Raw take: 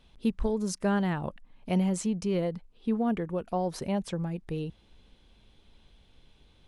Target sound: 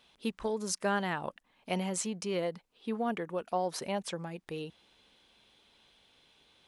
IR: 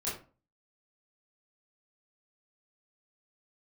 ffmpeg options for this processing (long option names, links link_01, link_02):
-af "highpass=frequency=760:poles=1,volume=3dB"